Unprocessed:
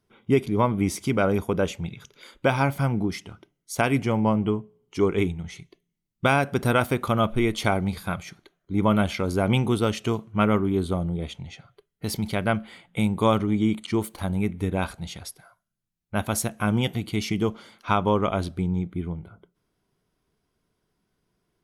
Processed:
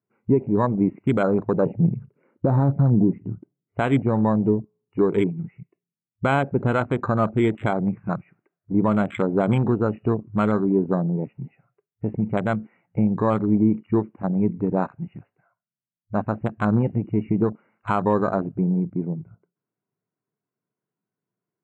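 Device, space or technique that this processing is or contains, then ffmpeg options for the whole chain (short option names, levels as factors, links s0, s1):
over-bright horn tweeter: -filter_complex "[0:a]asettb=1/sr,asplit=3[s0][s1][s2];[s0]atrim=end=1.664[s3];[s1]atrim=start=1.66:end=3.76,asetpts=PTS-STARTPTS,afade=t=in:d=0.004:c=qsin,afade=t=out:st=2.096:d=0.004:c=qsin,tiltshelf=f=850:g=10[s4];[s2]atrim=start=3.756[s5];[s3][s4]acrossfade=d=0.004:c1=hsin:c2=qsin[s6];[s6][s5]acrossfade=d=0.004:c1=qsin:c2=hsin,afftfilt=real='re*between(b*sr/4096,100,2900)':imag='im*between(b*sr/4096,100,2900)':win_size=4096:overlap=0.75,afwtdn=0.0282,highshelf=f=3900:t=q:w=3:g=11,alimiter=limit=0.188:level=0:latency=1:release=181,volume=1.78"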